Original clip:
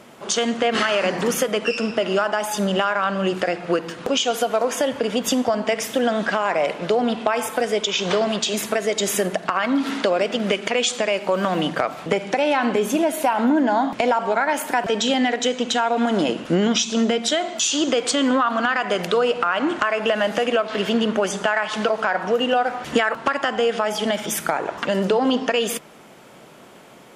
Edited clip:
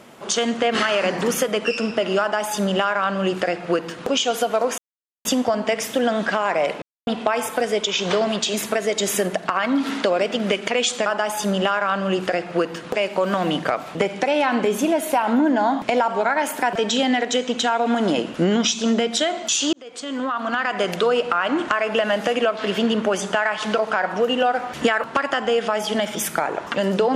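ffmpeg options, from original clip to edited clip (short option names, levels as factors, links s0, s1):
-filter_complex "[0:a]asplit=8[s0][s1][s2][s3][s4][s5][s6][s7];[s0]atrim=end=4.78,asetpts=PTS-STARTPTS,afade=t=out:st=4.776:d=0.004:c=hsin[s8];[s1]atrim=start=4.78:end=5.25,asetpts=PTS-STARTPTS,volume=0[s9];[s2]atrim=start=5.25:end=6.82,asetpts=PTS-STARTPTS,afade=t=in:d=0.004:c=hsin,afade=t=out:st=1.566:d=0.004:c=hsin[s10];[s3]atrim=start=6.82:end=7.07,asetpts=PTS-STARTPTS,volume=0[s11];[s4]atrim=start=7.07:end=11.062,asetpts=PTS-STARTPTS,afade=t=in:d=0.004:c=hsin[s12];[s5]atrim=start=2.198:end=4.092[s13];[s6]atrim=start=11.058:end=17.84,asetpts=PTS-STARTPTS,afade=t=out:st=6.778:d=0.004:c=hsin[s14];[s7]atrim=start=17.84,asetpts=PTS-STARTPTS,afade=t=in:d=1.08[s15];[s8][s9][s10][s11][s12]concat=n=5:v=0:a=1[s16];[s16][s13]acrossfade=d=0.004:c1=hsin:c2=hsin[s17];[s14][s15]concat=n=2:v=0:a=1[s18];[s17][s18]acrossfade=d=0.004:c1=hsin:c2=hsin"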